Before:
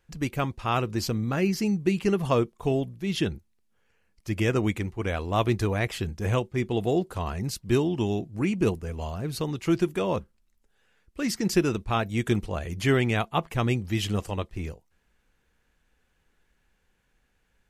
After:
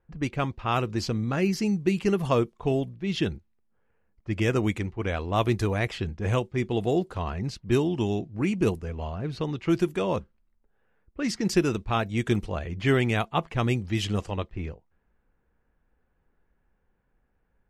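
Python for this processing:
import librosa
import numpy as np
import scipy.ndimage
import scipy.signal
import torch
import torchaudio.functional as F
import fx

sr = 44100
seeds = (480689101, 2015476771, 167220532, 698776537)

y = fx.env_lowpass(x, sr, base_hz=1200.0, full_db=-20.5)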